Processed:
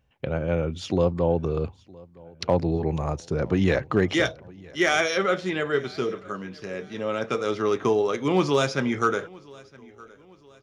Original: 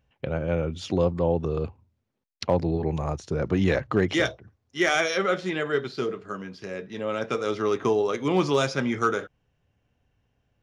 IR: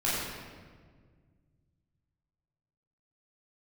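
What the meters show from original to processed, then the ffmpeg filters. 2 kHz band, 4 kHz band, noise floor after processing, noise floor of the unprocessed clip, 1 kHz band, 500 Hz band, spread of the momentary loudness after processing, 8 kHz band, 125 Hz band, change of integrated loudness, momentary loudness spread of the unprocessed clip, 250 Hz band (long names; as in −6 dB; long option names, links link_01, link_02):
+1.0 dB, +1.0 dB, −55 dBFS, −75 dBFS, +1.0 dB, +1.0 dB, 12 LU, +1.0 dB, +1.0 dB, +1.0 dB, 12 LU, +1.0 dB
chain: -af "aecho=1:1:965|1930|2895:0.0631|0.0278|0.0122,volume=1dB"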